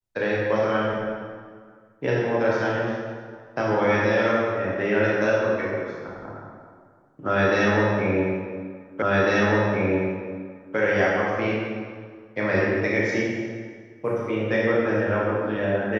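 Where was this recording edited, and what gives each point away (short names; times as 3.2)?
9.02 repeat of the last 1.75 s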